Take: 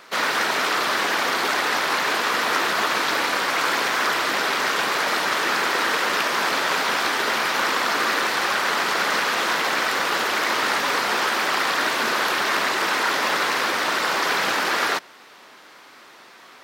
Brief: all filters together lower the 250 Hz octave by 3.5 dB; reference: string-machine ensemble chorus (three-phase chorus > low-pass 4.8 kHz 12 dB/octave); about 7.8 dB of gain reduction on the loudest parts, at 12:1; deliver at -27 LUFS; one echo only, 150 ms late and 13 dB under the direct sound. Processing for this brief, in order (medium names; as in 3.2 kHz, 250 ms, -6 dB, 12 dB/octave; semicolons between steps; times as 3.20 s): peaking EQ 250 Hz -5 dB; compression 12:1, threshold -26 dBFS; delay 150 ms -13 dB; three-phase chorus; low-pass 4.8 kHz 12 dB/octave; trim +4.5 dB